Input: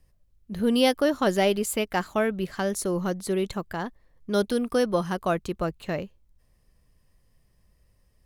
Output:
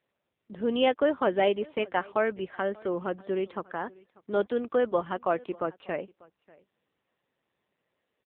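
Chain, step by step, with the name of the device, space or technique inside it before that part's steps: satellite phone (BPF 320–3100 Hz; echo 0.592 s -24 dB; AMR-NB 6.7 kbps 8000 Hz)

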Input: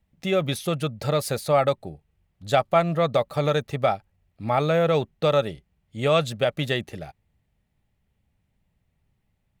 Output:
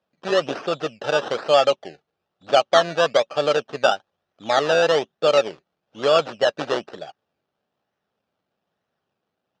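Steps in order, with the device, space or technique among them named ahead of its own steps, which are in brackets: circuit-bent sampling toy (decimation with a swept rate 16×, swing 60% 1.1 Hz; speaker cabinet 430–5000 Hz, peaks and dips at 960 Hz -5 dB, 2100 Hz -10 dB, 4400 Hz -4 dB); gain +6 dB

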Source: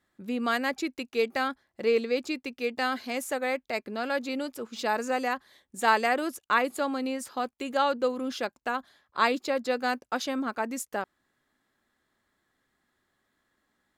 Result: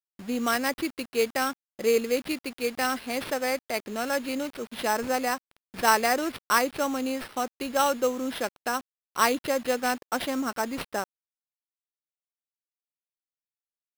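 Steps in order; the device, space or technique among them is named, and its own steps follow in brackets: early 8-bit sampler (sample-rate reducer 6900 Hz, jitter 0%; bit-crush 8-bit); gain +1.5 dB

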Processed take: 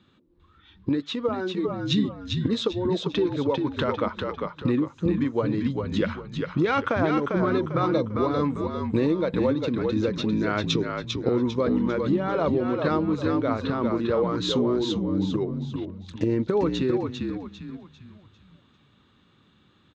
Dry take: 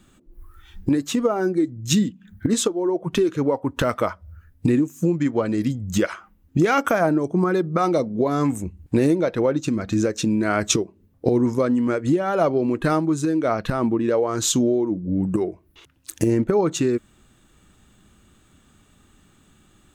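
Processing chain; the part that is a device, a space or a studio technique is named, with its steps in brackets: frequency-shifting delay pedal into a guitar cabinet (frequency-shifting echo 0.398 s, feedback 38%, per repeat -49 Hz, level -4.5 dB; speaker cabinet 91–4400 Hz, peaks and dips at 100 Hz +4 dB, 480 Hz +3 dB, 700 Hz -5 dB, 1000 Hz +4 dB, 3800 Hz +7 dB); 1–1.65 low shelf 330 Hz -7 dB; gain -5 dB

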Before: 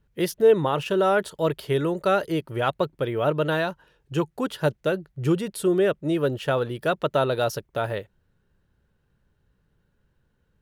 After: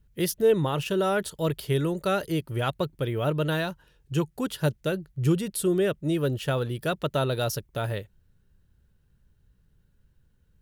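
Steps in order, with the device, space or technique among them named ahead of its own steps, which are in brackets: smiley-face EQ (low shelf 120 Hz +7.5 dB; bell 800 Hz -6 dB 2.9 oct; high shelf 6600 Hz +6.5 dB)

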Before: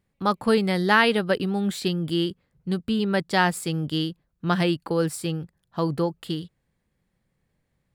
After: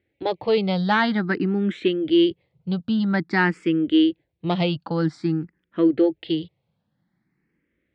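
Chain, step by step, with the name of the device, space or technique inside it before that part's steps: barber-pole phaser into a guitar amplifier (endless phaser +0.5 Hz; soft clip -14 dBFS, distortion -19 dB; speaker cabinet 86–4100 Hz, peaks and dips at 320 Hz +9 dB, 1100 Hz -5 dB, 2100 Hz +5 dB); gain +4 dB

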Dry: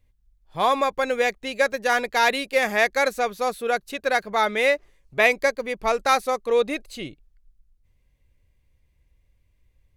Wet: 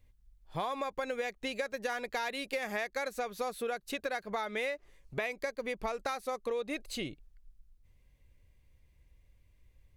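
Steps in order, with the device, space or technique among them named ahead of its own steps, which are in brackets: serial compression, peaks first (compressor, threshold -27 dBFS, peak gain reduction 13.5 dB; compressor 2:1, threshold -35 dBFS, peak gain reduction 6.5 dB)

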